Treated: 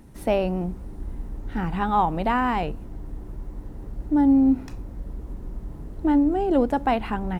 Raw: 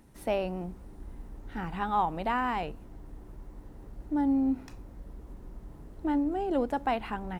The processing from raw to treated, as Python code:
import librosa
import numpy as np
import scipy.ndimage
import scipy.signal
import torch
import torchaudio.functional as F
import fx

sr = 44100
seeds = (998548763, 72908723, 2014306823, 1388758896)

y = fx.low_shelf(x, sr, hz=390.0, db=6.0)
y = F.gain(torch.from_numpy(y), 5.0).numpy()